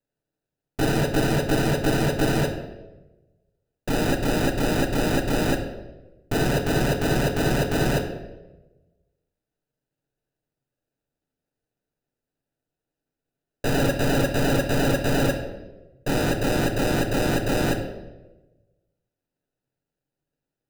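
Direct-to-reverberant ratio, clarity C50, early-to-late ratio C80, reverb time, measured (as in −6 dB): 2.0 dB, 8.0 dB, 10.0 dB, 1.1 s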